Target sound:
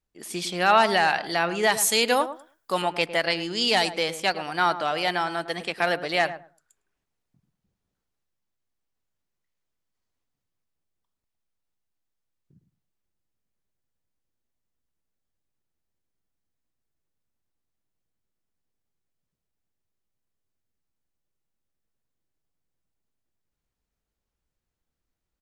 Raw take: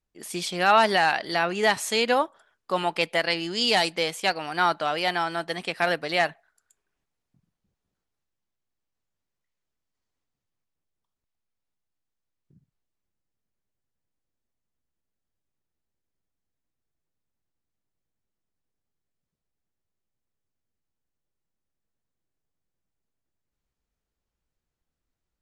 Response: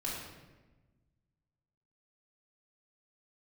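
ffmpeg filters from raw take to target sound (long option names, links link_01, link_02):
-filter_complex "[0:a]asettb=1/sr,asplit=3[link_01][link_02][link_03];[link_01]atrim=end=1.724[link_04];[link_02]atrim=start=1.72:end=2.82,asetpts=PTS-STARTPTS,afade=type=in:duration=0.004:curve=qsin,afade=type=out:start_time=1.096:duration=0.004:curve=qsin,aemphasis=mode=production:type=50fm[link_05];[link_03]atrim=start=2.816[link_06];[link_04][link_05]acrossfade=duration=0.004:curve1=hsin:curve2=qsin[link_07];[link_07][link_06]acrossfade=duration=0.004:curve1=qsin:curve2=hsin,asplit=2[link_08][link_09];[link_09]adelay=106,lowpass=frequency=1000:poles=1,volume=-10.5dB,asplit=2[link_10][link_11];[link_11]adelay=106,lowpass=frequency=1000:poles=1,volume=0.2,asplit=2[link_12][link_13];[link_13]adelay=106,lowpass=frequency=1000:poles=1,volume=0.2[link_14];[link_10][link_12][link_14]amix=inputs=3:normalize=0[link_15];[link_08][link_15]amix=inputs=2:normalize=0"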